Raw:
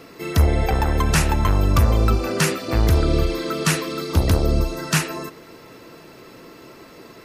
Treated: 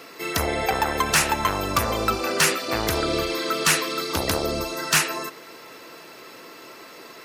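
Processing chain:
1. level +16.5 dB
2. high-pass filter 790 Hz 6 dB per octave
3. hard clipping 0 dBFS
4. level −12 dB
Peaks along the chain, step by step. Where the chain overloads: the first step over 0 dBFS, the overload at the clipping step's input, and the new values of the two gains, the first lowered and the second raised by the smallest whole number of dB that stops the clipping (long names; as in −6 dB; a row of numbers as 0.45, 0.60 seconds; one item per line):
+10.0, +9.5, 0.0, −12.0 dBFS
step 1, 9.5 dB
step 1 +6.5 dB, step 4 −2 dB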